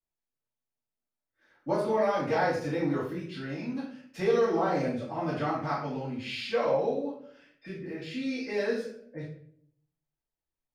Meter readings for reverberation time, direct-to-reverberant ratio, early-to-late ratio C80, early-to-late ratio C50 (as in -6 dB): 0.60 s, -15.0 dB, 8.0 dB, 3.0 dB